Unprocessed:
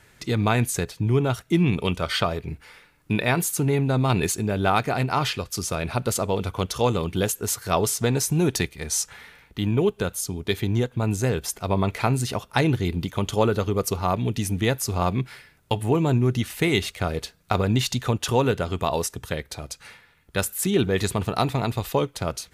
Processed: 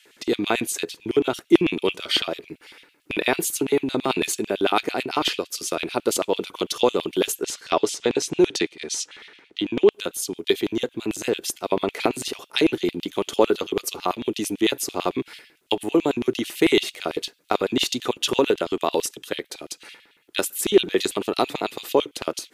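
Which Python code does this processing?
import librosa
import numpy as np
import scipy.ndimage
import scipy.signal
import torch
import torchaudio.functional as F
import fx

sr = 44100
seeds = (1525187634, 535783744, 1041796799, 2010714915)

y = fx.lowpass(x, sr, hz=6100.0, slope=12, at=(7.43, 9.92))
y = fx.filter_lfo_highpass(y, sr, shape='square', hz=9.0, low_hz=330.0, high_hz=3000.0, q=2.9)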